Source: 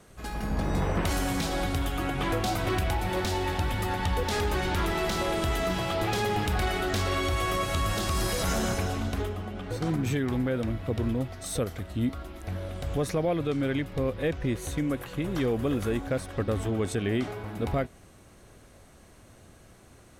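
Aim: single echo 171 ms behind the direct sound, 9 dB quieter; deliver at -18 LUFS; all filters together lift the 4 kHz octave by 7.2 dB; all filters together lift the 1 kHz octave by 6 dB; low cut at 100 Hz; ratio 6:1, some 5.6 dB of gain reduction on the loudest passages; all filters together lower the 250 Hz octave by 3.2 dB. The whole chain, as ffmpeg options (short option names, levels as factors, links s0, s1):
-af "highpass=100,equalizer=f=250:t=o:g=-4.5,equalizer=f=1000:t=o:g=7.5,equalizer=f=4000:t=o:g=8.5,acompressor=threshold=0.0447:ratio=6,aecho=1:1:171:0.355,volume=4.47"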